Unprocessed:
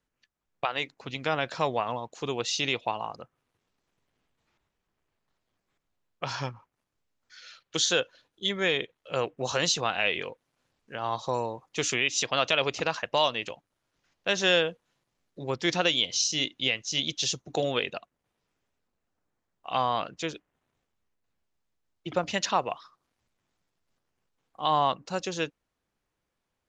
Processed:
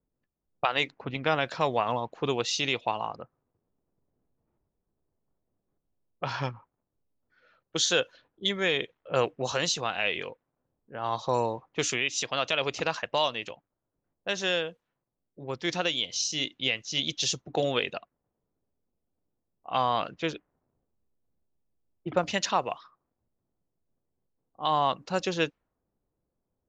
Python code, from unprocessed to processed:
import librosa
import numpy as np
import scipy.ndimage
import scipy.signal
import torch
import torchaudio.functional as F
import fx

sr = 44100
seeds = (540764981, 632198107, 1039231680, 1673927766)

y = fx.env_lowpass(x, sr, base_hz=570.0, full_db=-25.0)
y = fx.rider(y, sr, range_db=10, speed_s=0.5)